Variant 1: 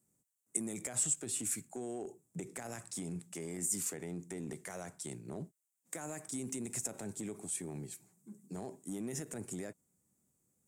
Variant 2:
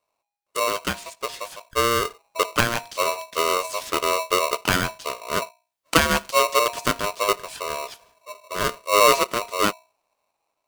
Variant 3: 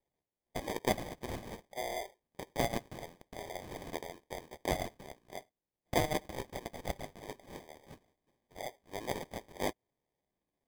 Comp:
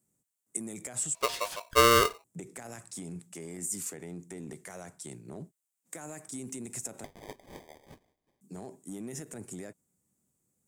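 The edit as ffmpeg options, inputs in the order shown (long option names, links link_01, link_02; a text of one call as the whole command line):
ffmpeg -i take0.wav -i take1.wav -i take2.wav -filter_complex "[0:a]asplit=3[link_01][link_02][link_03];[link_01]atrim=end=1.152[link_04];[1:a]atrim=start=1.148:end=2.242[link_05];[link_02]atrim=start=2.238:end=7.042[link_06];[2:a]atrim=start=7.038:end=8.412[link_07];[link_03]atrim=start=8.408[link_08];[link_04][link_05]acrossfade=duration=0.004:curve1=hsin:curve2=hsin[link_09];[link_09][link_06]acrossfade=duration=0.004:curve1=hsin:curve2=hsin[link_10];[link_10][link_07]acrossfade=duration=0.004:curve1=hsin:curve2=hsin[link_11];[link_11][link_08]acrossfade=duration=0.004:curve1=hsin:curve2=hsin" out.wav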